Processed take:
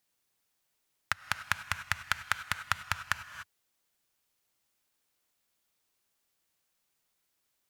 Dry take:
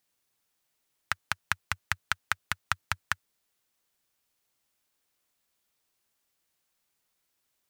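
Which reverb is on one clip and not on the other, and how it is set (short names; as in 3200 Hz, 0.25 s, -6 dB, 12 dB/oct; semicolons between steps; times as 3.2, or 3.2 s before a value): non-linear reverb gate 0.32 s rising, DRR 10.5 dB; gain -1 dB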